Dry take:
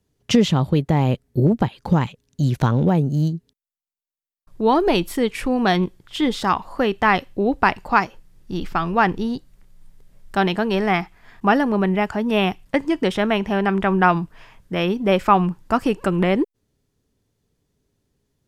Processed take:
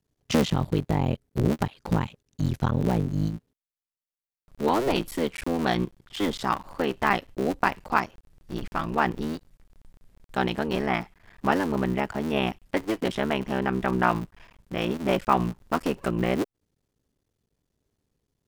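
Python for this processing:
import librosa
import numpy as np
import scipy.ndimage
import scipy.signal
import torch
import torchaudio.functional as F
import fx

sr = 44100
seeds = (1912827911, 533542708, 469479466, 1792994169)

y = fx.cycle_switch(x, sr, every=3, mode='muted')
y = y * 10.0 ** (-5.0 / 20.0)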